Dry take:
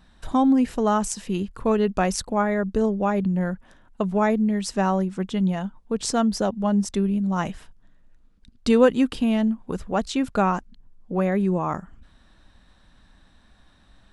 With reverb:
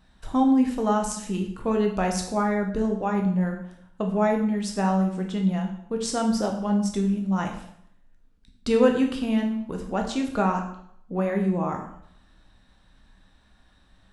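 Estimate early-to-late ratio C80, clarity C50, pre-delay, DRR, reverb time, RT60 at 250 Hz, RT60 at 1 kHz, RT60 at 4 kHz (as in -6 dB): 10.5 dB, 7.0 dB, 6 ms, 2.0 dB, 0.70 s, 0.65 s, 0.65 s, 0.65 s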